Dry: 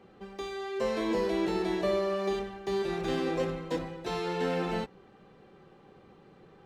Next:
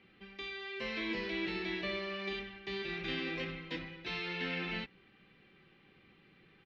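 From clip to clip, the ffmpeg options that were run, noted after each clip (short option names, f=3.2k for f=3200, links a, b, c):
-af "firequalizer=gain_entry='entry(310,0);entry(450,-7);entry(810,-7);entry(2200,14);entry(5200,2);entry(7500,-18)':delay=0.05:min_phase=1,volume=-7.5dB"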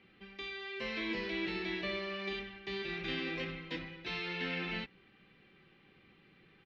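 -af anull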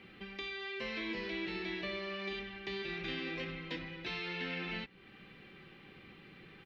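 -af "acompressor=threshold=-53dB:ratio=2,volume=8dB"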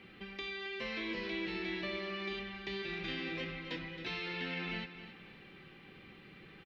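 -af "aecho=1:1:270|540|810|1080:0.251|0.0879|0.0308|0.0108"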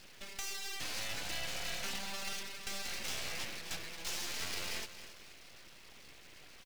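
-af "aeval=exprs='abs(val(0))':c=same,crystalizer=i=2.5:c=0,volume=-1dB"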